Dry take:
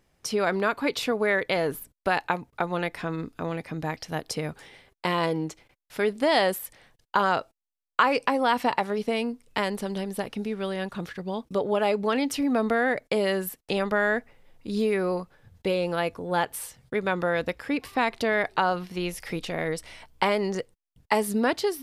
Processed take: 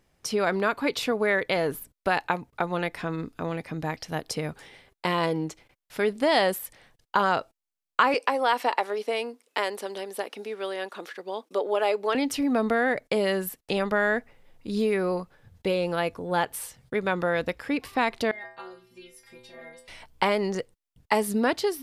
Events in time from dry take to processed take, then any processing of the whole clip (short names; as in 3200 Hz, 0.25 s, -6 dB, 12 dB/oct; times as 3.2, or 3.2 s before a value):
8.14–12.15 HPF 330 Hz 24 dB/oct
18.31–19.88 metallic resonator 120 Hz, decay 0.75 s, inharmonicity 0.008